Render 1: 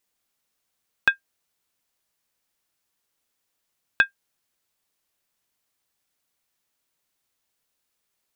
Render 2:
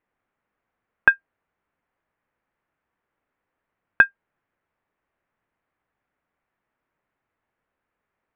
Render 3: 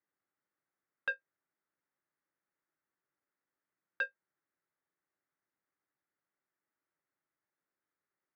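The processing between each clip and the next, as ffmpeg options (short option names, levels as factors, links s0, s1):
-af "lowpass=f=2000:w=0.5412,lowpass=f=2000:w=1.3066,volume=2"
-filter_complex "[0:a]acrossover=split=310|1800[s0][s1][s2];[s2]acrusher=samples=42:mix=1:aa=0.000001[s3];[s0][s1][s3]amix=inputs=3:normalize=0,asoftclip=type=tanh:threshold=0.1,highpass=200,equalizer=f=230:t=q:w=4:g=-9,equalizer=f=470:t=q:w=4:g=-8,equalizer=f=700:t=q:w=4:g=-8,equalizer=f=1000:t=q:w=4:g=-6,equalizer=f=2000:t=q:w=4:g=7,lowpass=f=3200:w=0.5412,lowpass=f=3200:w=1.3066,volume=0.398"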